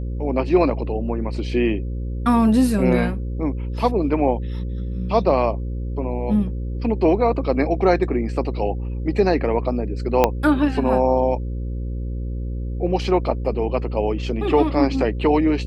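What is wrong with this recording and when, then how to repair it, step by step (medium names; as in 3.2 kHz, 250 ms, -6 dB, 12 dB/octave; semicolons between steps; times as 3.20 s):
buzz 60 Hz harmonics 9 -26 dBFS
10.24 s: pop -2 dBFS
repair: de-click; de-hum 60 Hz, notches 9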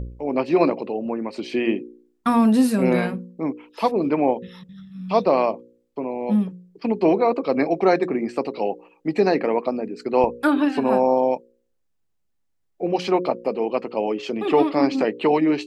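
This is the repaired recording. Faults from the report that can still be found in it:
10.24 s: pop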